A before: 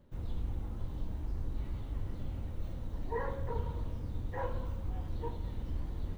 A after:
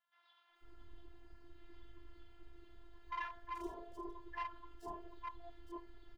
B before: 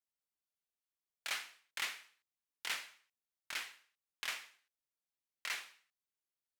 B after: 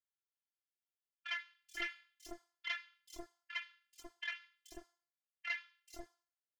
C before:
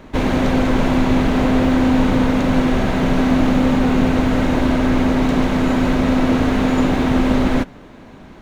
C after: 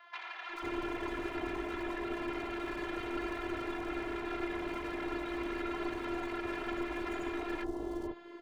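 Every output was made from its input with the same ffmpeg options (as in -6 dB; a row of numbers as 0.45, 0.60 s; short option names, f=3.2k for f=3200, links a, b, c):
-filter_complex "[0:a]highpass=f=110:p=1,afftdn=nr=15:nf=-36,acrossover=split=540 5700:gain=0.112 1 0.178[a][b][c];[a][b][c]amix=inputs=3:normalize=0,aecho=1:1:2.3:0.76,adynamicequalizer=threshold=0.00355:dfrequency=3300:dqfactor=3:tfrequency=3300:tqfactor=3:attack=5:release=100:ratio=0.375:range=2:mode=cutabove:tftype=bell,acrossover=split=370[d][e];[d]alimiter=level_in=8dB:limit=-24dB:level=0:latency=1:release=314,volume=-8dB[f];[e]acompressor=threshold=-35dB:ratio=16[g];[f][g]amix=inputs=2:normalize=0,afftfilt=real='hypot(re,im)*cos(PI*b)':imag='0':win_size=512:overlap=0.75,aeval=exprs='clip(val(0),-1,0.00473)':c=same,acrossover=split=850|5300[h][i][j];[j]adelay=430[k];[h]adelay=490[l];[l][i][k]amix=inputs=3:normalize=0,volume=10dB"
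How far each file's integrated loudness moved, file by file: -7.5, -2.0, -21.0 LU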